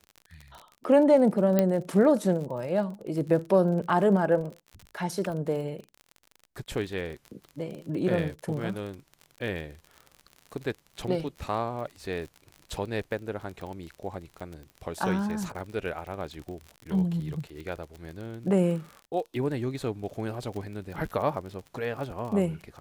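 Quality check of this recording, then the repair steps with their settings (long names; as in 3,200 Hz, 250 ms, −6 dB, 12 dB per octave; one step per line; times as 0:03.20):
surface crackle 43 per second −35 dBFS
0:01.59: click −10 dBFS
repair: click removal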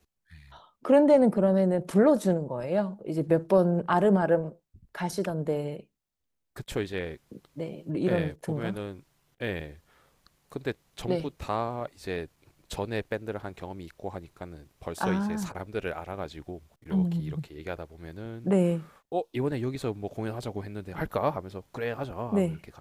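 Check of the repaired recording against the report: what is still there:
0:01.59: click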